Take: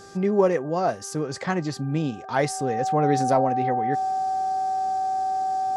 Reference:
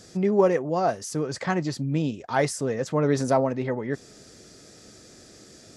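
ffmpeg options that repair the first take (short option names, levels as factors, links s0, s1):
-af "bandreject=f=394.9:t=h:w=4,bandreject=f=789.8:t=h:w=4,bandreject=f=1184.7:t=h:w=4,bandreject=f=1579.6:t=h:w=4,bandreject=f=760:w=30"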